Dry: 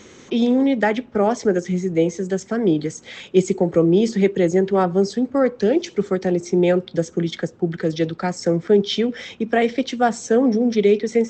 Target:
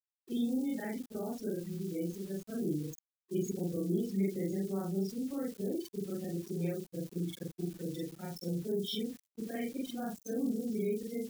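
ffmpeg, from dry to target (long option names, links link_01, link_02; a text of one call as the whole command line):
ffmpeg -i in.wav -filter_complex "[0:a]afftfilt=real='re':imag='-im':win_size=4096:overlap=0.75,afftdn=noise_reduction=33:noise_floor=-30,aeval=exprs='val(0)*gte(abs(val(0)),0.00891)':channel_layout=same,acrossover=split=320|3000[link_01][link_02][link_03];[link_02]acompressor=threshold=-48dB:ratio=2[link_04];[link_01][link_04][link_03]amix=inputs=3:normalize=0,agate=range=-33dB:threshold=-33dB:ratio=3:detection=peak,crystalizer=i=2:c=0,volume=-8dB" out.wav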